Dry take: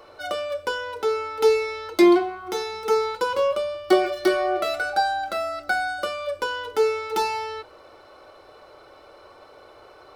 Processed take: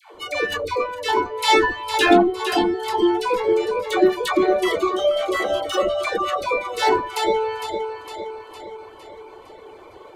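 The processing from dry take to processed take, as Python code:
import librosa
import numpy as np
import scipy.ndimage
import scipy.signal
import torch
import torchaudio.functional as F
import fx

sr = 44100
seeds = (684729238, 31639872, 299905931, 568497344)

p1 = fx.echo_feedback(x, sr, ms=458, feedback_pct=54, wet_db=-8.0)
p2 = np.clip(10.0 ** (23.0 / 20.0) * p1, -1.0, 1.0) / 10.0 ** (23.0 / 20.0)
p3 = p1 + F.gain(torch.from_numpy(p2), -4.5).numpy()
p4 = fx.formant_shift(p3, sr, semitones=-4)
p5 = fx.dereverb_blind(p4, sr, rt60_s=0.55)
p6 = fx.dispersion(p5, sr, late='lows', ms=145.0, hz=670.0)
y = F.gain(torch.from_numpy(p6), 1.5).numpy()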